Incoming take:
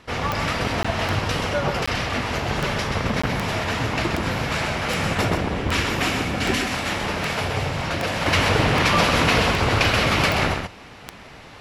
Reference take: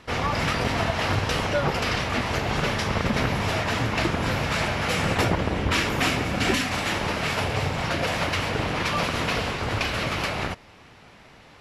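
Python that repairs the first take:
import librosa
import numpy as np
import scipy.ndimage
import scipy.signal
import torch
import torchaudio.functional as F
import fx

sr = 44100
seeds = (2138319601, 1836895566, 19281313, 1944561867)

y = fx.fix_declick_ar(x, sr, threshold=10.0)
y = fx.fix_interpolate(y, sr, at_s=(0.83, 1.86, 3.22), length_ms=15.0)
y = fx.fix_echo_inverse(y, sr, delay_ms=129, level_db=-6.0)
y = fx.fix_level(y, sr, at_s=8.26, step_db=-6.5)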